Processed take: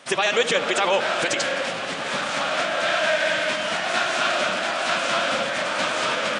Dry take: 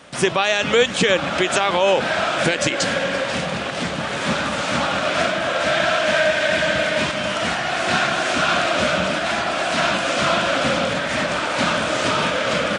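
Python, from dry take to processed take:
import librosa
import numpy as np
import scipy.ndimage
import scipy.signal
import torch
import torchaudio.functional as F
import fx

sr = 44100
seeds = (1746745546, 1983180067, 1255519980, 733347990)

p1 = fx.highpass(x, sr, hz=540.0, slope=6)
p2 = fx.stretch_vocoder(p1, sr, factor=0.5)
y = p2 + fx.echo_filtered(p2, sr, ms=74, feedback_pct=85, hz=2000.0, wet_db=-12.5, dry=0)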